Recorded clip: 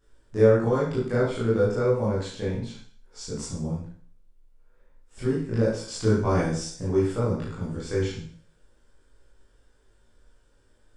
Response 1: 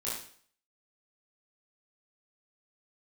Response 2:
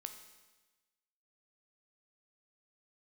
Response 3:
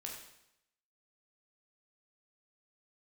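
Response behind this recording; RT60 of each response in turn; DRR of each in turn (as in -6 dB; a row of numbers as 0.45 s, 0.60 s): 1; 0.50 s, 1.2 s, 0.80 s; -9.0 dB, 6.5 dB, -1.0 dB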